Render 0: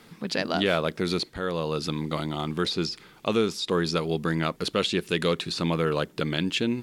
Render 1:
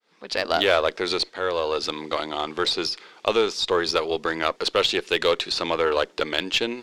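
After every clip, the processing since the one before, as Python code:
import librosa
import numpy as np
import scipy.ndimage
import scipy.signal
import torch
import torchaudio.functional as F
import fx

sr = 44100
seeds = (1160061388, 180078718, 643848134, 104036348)

y = fx.fade_in_head(x, sr, length_s=0.52)
y = scipy.signal.sosfilt(scipy.signal.cheby1(2, 1.0, [490.0, 5700.0], 'bandpass', fs=sr, output='sos'), y)
y = fx.cheby_harmonics(y, sr, harmonics=(8,), levels_db=(-30,), full_scale_db=-10.5)
y = y * 10.0 ** (6.0 / 20.0)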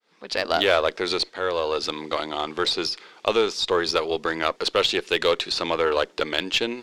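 y = x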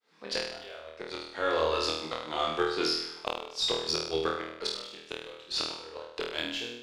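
y = fx.fade_out_tail(x, sr, length_s=0.86)
y = fx.gate_flip(y, sr, shuts_db=-11.0, range_db=-24)
y = fx.room_flutter(y, sr, wall_m=4.3, rt60_s=0.76)
y = y * 10.0 ** (-5.5 / 20.0)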